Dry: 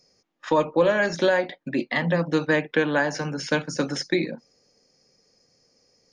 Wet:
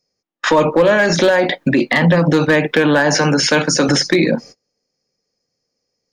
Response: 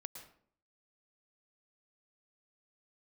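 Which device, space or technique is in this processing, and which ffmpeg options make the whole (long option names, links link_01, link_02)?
loud club master: -filter_complex "[0:a]asettb=1/sr,asplit=3[link_01][link_02][link_03];[link_01]atrim=end=3.164[link_04];[link_02]atrim=start=3.16:end=3.89,asetpts=PTS-STARTPTS,afade=type=in:duration=0.004:curve=qsin,afade=type=out:start_time=0.726:duration=0.004:curve=qsin,highpass=frequency=240:poles=1[link_05];[link_03]atrim=start=3.886[link_06];[link_04][link_05]acrossfade=duration=0.004:curve1=hsin:curve2=qsin[link_07];[link_07][link_06]acrossfade=duration=0.004:curve1=qsin:curve2=hsin,agate=range=-32dB:threshold=-52dB:ratio=16:detection=peak,acompressor=threshold=-26dB:ratio=1.5,asoftclip=type=hard:threshold=-17.5dB,alimiter=level_in=26.5dB:limit=-1dB:release=50:level=0:latency=1,volume=-5dB"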